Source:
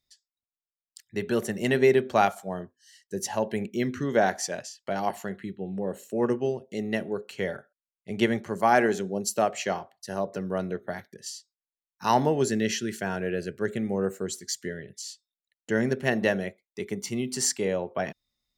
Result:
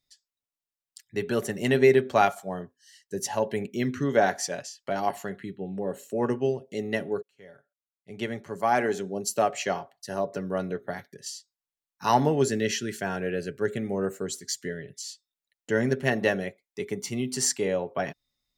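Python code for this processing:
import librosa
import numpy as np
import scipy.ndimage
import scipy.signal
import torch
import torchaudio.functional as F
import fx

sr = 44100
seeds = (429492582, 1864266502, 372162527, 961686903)

y = fx.edit(x, sr, fx.fade_in_span(start_s=7.22, length_s=2.29), tone=tone)
y = y + 0.34 * np.pad(y, (int(7.1 * sr / 1000.0), 0))[:len(y)]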